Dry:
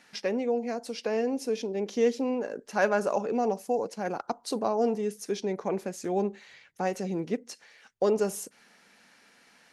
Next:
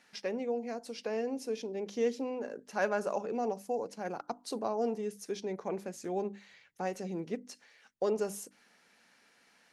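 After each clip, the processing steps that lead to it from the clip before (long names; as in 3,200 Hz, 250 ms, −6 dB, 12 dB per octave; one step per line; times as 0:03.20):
mains-hum notches 50/100/150/200/250/300 Hz
level −6 dB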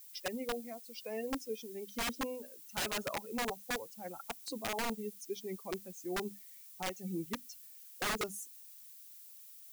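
spectral dynamics exaggerated over time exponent 2
wrap-around overflow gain 31.5 dB
background noise violet −56 dBFS
level +2 dB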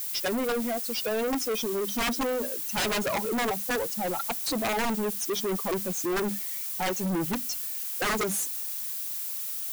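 leveller curve on the samples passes 5
level +3 dB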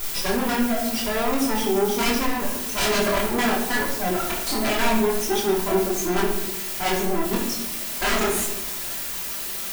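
lower of the sound and its delayed copy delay 3 ms
multi-voice chorus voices 2, 1.4 Hz, delay 24 ms, depth 3 ms
convolution reverb RT60 1.0 s, pre-delay 5 ms, DRR 0 dB
level +7 dB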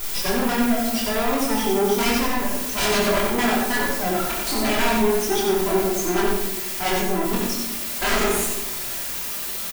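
single-tap delay 91 ms −4.5 dB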